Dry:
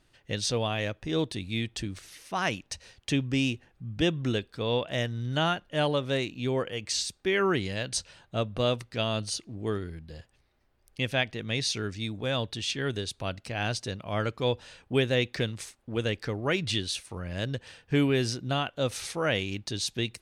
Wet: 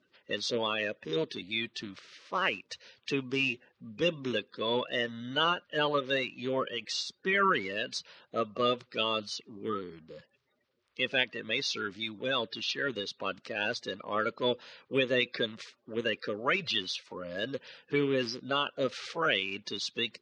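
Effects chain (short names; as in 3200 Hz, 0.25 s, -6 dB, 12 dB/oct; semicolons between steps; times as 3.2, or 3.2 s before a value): bin magnitudes rounded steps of 30 dB; speaker cabinet 260–5000 Hz, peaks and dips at 320 Hz -5 dB, 530 Hz +3 dB, 750 Hz -8 dB, 1200 Hz +4 dB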